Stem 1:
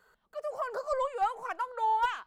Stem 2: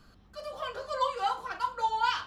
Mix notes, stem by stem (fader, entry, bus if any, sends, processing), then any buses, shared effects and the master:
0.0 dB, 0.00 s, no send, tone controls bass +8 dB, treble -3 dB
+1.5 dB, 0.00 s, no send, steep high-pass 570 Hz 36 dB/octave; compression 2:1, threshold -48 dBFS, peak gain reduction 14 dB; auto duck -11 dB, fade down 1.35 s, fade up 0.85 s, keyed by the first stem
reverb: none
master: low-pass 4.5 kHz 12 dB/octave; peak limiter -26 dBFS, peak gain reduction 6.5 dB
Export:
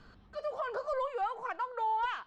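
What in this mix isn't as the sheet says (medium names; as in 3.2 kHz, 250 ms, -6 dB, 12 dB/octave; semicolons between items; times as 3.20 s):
stem 1: missing tone controls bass +8 dB, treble -3 dB; stem 2: missing steep high-pass 570 Hz 36 dB/octave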